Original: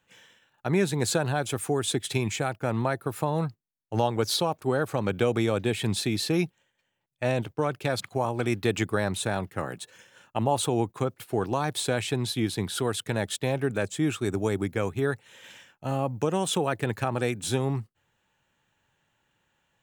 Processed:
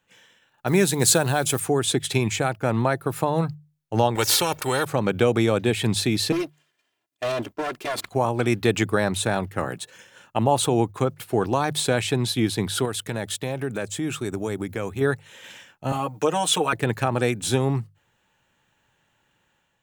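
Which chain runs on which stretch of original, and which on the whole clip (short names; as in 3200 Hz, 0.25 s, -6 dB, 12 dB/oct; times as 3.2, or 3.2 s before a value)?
0.67–1.6 block floating point 7-bit + high shelf 6000 Hz +11.5 dB
4.15–4.85 comb 2.2 ms, depth 57% + spectral compressor 2:1
6.32–8.06 minimum comb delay 2.9 ms + HPF 170 Hz + hard clip -26.5 dBFS
12.85–15.01 high shelf 9300 Hz +4.5 dB + compressor 2:1, threshold -32 dBFS
15.92–16.73 HPF 590 Hz 6 dB/oct + comb 6.5 ms, depth 88%
whole clip: notches 50/100/150 Hz; AGC gain up to 5 dB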